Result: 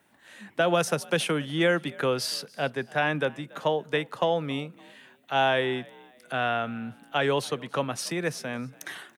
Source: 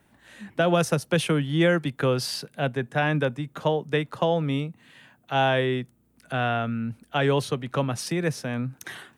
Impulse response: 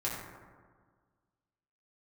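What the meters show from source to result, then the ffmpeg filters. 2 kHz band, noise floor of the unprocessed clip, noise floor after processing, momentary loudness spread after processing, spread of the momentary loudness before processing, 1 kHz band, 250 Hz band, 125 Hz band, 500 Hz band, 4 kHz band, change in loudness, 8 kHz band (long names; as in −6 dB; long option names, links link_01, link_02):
0.0 dB, −63 dBFS, −58 dBFS, 11 LU, 10 LU, −0.5 dB, −5.0 dB, −8.5 dB, −1.5 dB, 0.0 dB, −2.0 dB, 0.0 dB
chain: -filter_complex "[0:a]highpass=frequency=370:poles=1,asplit=3[link_01][link_02][link_03];[link_02]adelay=283,afreqshift=54,volume=-24dB[link_04];[link_03]adelay=566,afreqshift=108,volume=-32.4dB[link_05];[link_01][link_04][link_05]amix=inputs=3:normalize=0,asplit=2[link_06][link_07];[1:a]atrim=start_sample=2205,asetrate=70560,aresample=44100[link_08];[link_07][link_08]afir=irnorm=-1:irlink=0,volume=-28.5dB[link_09];[link_06][link_09]amix=inputs=2:normalize=0"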